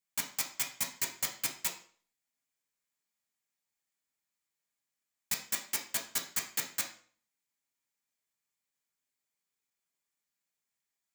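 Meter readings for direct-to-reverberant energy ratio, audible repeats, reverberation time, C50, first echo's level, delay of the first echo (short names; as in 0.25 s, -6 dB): 0.0 dB, none, 0.45 s, 9.5 dB, none, none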